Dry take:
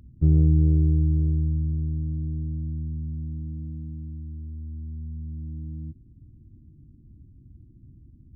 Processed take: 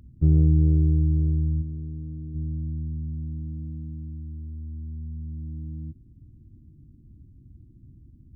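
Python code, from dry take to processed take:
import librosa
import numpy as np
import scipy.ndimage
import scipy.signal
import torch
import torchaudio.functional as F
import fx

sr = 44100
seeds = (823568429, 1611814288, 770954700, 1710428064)

y = fx.low_shelf(x, sr, hz=220.0, db=-8.5, at=(1.61, 2.34), fade=0.02)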